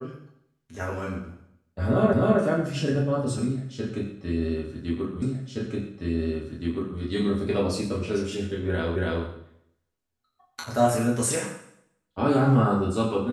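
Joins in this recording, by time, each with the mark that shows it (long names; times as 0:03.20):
0:02.13: the same again, the last 0.26 s
0:05.22: the same again, the last 1.77 s
0:08.96: the same again, the last 0.28 s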